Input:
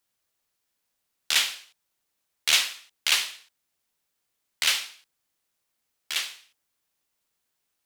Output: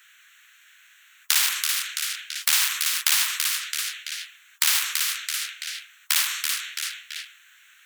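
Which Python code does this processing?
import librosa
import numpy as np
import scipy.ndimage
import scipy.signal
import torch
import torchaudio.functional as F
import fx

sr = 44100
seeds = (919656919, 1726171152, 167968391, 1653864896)

p1 = fx.wiener(x, sr, points=9)
p2 = fx.over_compress(p1, sr, threshold_db=-30.0, ratio=-1.0)
p3 = p1 + (p2 * 10.0 ** (-3.0 / 20.0))
p4 = scipy.signal.sosfilt(scipy.signal.ellip(4, 1.0, 70, 1500.0, 'highpass', fs=sr, output='sos'), p3)
p5 = p4 + fx.echo_feedback(p4, sr, ms=333, feedback_pct=28, wet_db=-16.5, dry=0)
p6 = fx.spectral_comp(p5, sr, ratio=4.0)
y = p6 * 10.0 ** (3.0 / 20.0)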